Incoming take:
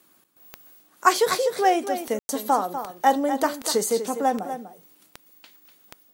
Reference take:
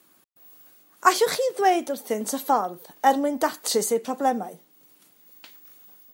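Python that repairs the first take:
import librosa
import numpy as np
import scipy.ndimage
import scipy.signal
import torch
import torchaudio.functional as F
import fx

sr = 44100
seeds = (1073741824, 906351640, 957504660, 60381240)

y = fx.fix_declick_ar(x, sr, threshold=10.0)
y = fx.fix_ambience(y, sr, seeds[0], print_start_s=0.0, print_end_s=0.5, start_s=2.19, end_s=2.29)
y = fx.fix_echo_inverse(y, sr, delay_ms=246, level_db=-10.0)
y = fx.gain(y, sr, db=fx.steps((0.0, 0.0), (5.06, 3.0)))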